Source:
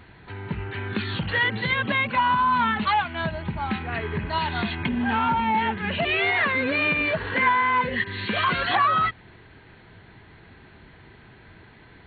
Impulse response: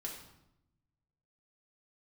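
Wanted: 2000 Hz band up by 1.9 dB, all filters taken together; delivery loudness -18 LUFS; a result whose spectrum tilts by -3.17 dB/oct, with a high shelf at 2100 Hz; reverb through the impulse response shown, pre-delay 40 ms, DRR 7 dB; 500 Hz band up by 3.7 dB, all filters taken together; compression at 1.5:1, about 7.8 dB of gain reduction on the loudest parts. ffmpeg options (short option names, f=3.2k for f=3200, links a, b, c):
-filter_complex "[0:a]equalizer=f=500:t=o:g=5,equalizer=f=2k:t=o:g=6,highshelf=f=2.1k:g=-7.5,acompressor=threshold=-38dB:ratio=1.5,asplit=2[a][b];[1:a]atrim=start_sample=2205,adelay=40[c];[b][c]afir=irnorm=-1:irlink=0,volume=-6dB[d];[a][d]amix=inputs=2:normalize=0,volume=10dB"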